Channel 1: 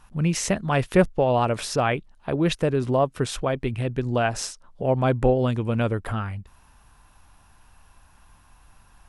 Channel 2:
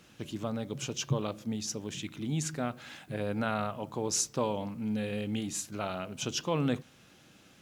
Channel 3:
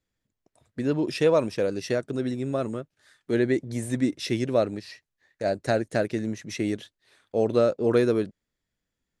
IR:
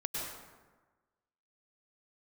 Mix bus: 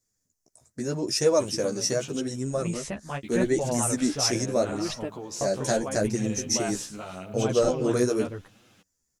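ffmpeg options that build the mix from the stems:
-filter_complex "[0:a]adelay=2400,volume=-7dB[link_01];[1:a]acompressor=threshold=-33dB:ratio=6,adelay=1200,volume=1.5dB,asplit=3[link_02][link_03][link_04];[link_02]atrim=end=2.2,asetpts=PTS-STARTPTS,afade=type=out:start_time=2.196:duration=0.004:curve=hsin[link_05];[link_03]atrim=start=2.2:end=3.23,asetpts=PTS-STARTPTS,volume=0[link_06];[link_04]atrim=start=3.23,asetpts=PTS-STARTPTS,afade=type=in:duration=0.004:curve=hsin[link_07];[link_05][link_06][link_07]concat=n=3:v=0:a=1,asplit=2[link_08][link_09];[link_09]volume=-14.5dB[link_10];[2:a]highshelf=frequency=4500:width_type=q:width=3:gain=11,volume=1.5dB,asplit=2[link_11][link_12];[link_12]apad=whole_len=506343[link_13];[link_01][link_13]sidechaingate=range=-33dB:threshold=-51dB:ratio=16:detection=peak[link_14];[3:a]atrim=start_sample=2205[link_15];[link_10][link_15]afir=irnorm=-1:irlink=0[link_16];[link_14][link_08][link_11][link_16]amix=inputs=4:normalize=0,flanger=delay=7.9:depth=8.3:regen=3:speed=0.81:shape=triangular"

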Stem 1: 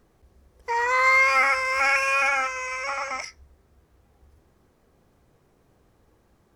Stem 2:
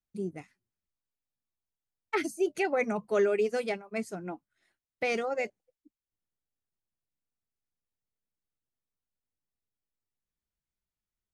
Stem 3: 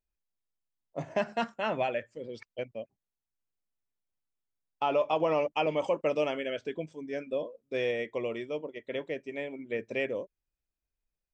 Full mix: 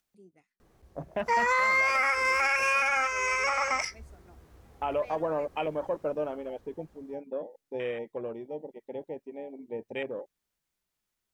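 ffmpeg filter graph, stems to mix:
ffmpeg -i stem1.wav -i stem2.wav -i stem3.wav -filter_complex "[0:a]dynaudnorm=framelen=120:gausssize=17:maxgain=6dB,adelay=600,volume=-0.5dB[link_01];[1:a]acompressor=mode=upward:threshold=-40dB:ratio=2.5,lowshelf=frequency=160:gain=-11,volume=-18.5dB[link_02];[2:a]afwtdn=0.0158,volume=-2.5dB[link_03];[link_01][link_02][link_03]amix=inputs=3:normalize=0,alimiter=limit=-17dB:level=0:latency=1:release=328" out.wav

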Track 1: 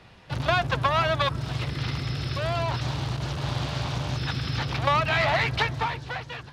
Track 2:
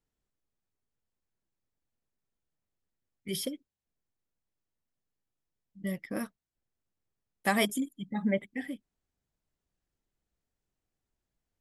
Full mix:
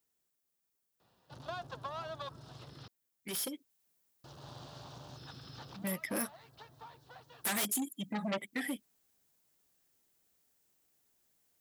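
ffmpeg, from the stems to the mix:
ffmpeg -i stem1.wav -i stem2.wav -filter_complex "[0:a]equalizer=frequency=2200:width=1.8:gain=-14,adelay=1000,volume=-15.5dB,asplit=3[link_01][link_02][link_03];[link_01]atrim=end=2.88,asetpts=PTS-STARTPTS,afade=type=out:start_time=2.876:duration=0.004:curve=hsin[link_04];[link_02]atrim=start=2.88:end=4.24,asetpts=PTS-STARTPTS,volume=0[link_05];[link_03]atrim=start=4.24,asetpts=PTS-STARTPTS,afade=type=in:duration=0.004:curve=hsin[link_06];[link_04][link_05][link_06]concat=n=3:v=0:a=1[link_07];[1:a]aemphasis=mode=production:type=50kf,acompressor=threshold=-37dB:ratio=2,aeval=exprs='0.0708*sin(PI/2*2.82*val(0)/0.0708)':channel_layout=same,volume=-5.5dB,afade=type=in:start_time=3.15:duration=0.72:silence=0.446684,asplit=2[link_08][link_09];[link_09]apad=whole_len=331967[link_10];[link_07][link_10]sidechaincompress=threshold=-49dB:ratio=4:attack=5.2:release=863[link_11];[link_11][link_08]amix=inputs=2:normalize=0,highpass=frequency=280:poles=1" out.wav

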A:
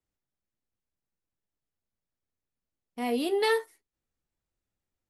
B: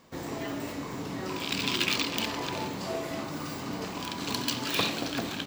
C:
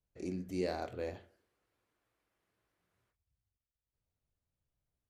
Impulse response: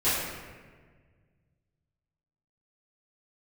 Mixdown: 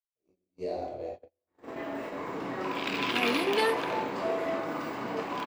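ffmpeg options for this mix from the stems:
-filter_complex "[0:a]adelay=150,volume=-2.5dB[link_01];[1:a]acrossover=split=270 2600:gain=0.178 1 0.158[link_02][link_03][link_04];[link_02][link_03][link_04]amix=inputs=3:normalize=0,adelay=1350,volume=2.5dB,asplit=2[link_05][link_06];[link_06]volume=-17.5dB[link_07];[2:a]equalizer=frequency=160:width_type=o:width=0.67:gain=-10,equalizer=frequency=630:width_type=o:width=0.67:gain=9,equalizer=frequency=1600:width_type=o:width=0.67:gain=-10,equalizer=frequency=10000:width_type=o:width=0.67:gain=-6,volume=-8.5dB,asplit=3[link_08][link_09][link_10];[link_09]volume=-9dB[link_11];[link_10]apad=whole_len=300354[link_12];[link_05][link_12]sidechaincompress=threshold=-58dB:ratio=4:attack=7:release=979[link_13];[3:a]atrim=start_sample=2205[link_14];[link_07][link_11]amix=inputs=2:normalize=0[link_15];[link_15][link_14]afir=irnorm=-1:irlink=0[link_16];[link_01][link_13][link_08][link_16]amix=inputs=4:normalize=0,agate=range=-39dB:threshold=-38dB:ratio=16:detection=peak"

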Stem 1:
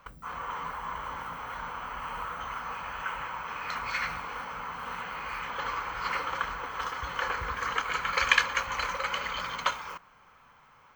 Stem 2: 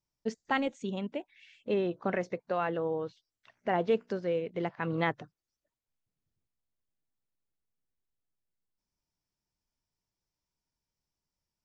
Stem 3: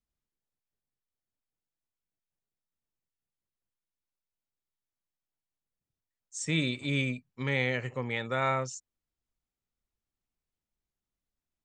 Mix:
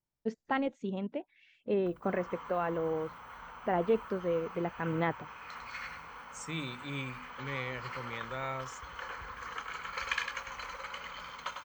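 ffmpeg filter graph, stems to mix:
ffmpeg -i stem1.wav -i stem2.wav -i stem3.wav -filter_complex "[0:a]adelay=1800,volume=-11.5dB,asplit=2[link_01][link_02];[link_02]volume=-6dB[link_03];[1:a]lowpass=frequency=1700:poles=1,volume=-0.5dB[link_04];[2:a]bandreject=frequency=50:width_type=h:width=6,bandreject=frequency=100:width_type=h:width=6,bandreject=frequency=150:width_type=h:width=6,bandreject=frequency=200:width_type=h:width=6,bandreject=frequency=250:width_type=h:width=6,volume=-9dB[link_05];[link_03]aecho=0:1:100:1[link_06];[link_01][link_04][link_05][link_06]amix=inputs=4:normalize=0" out.wav

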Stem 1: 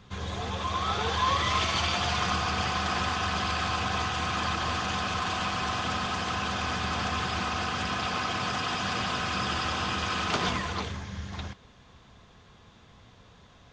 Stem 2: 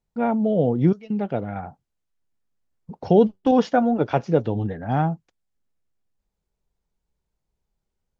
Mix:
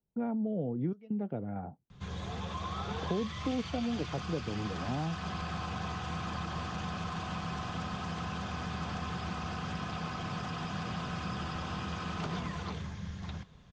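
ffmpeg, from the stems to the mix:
ffmpeg -i stem1.wav -i stem2.wav -filter_complex "[0:a]equalizer=frequency=160:width_type=o:width=0.3:gain=13,adelay=1900,volume=-7.5dB[link_01];[1:a]bandpass=frequency=300:width_type=q:width=0.72:csg=0,volume=-3dB[link_02];[link_01][link_02]amix=inputs=2:normalize=0,lowshelf=frequency=150:gain=8,acrossover=split=200|1300|3300[link_03][link_04][link_05][link_06];[link_03]acompressor=threshold=-39dB:ratio=4[link_07];[link_04]acompressor=threshold=-37dB:ratio=4[link_08];[link_05]acompressor=threshold=-48dB:ratio=4[link_09];[link_06]acompressor=threshold=-52dB:ratio=4[link_10];[link_07][link_08][link_09][link_10]amix=inputs=4:normalize=0" out.wav

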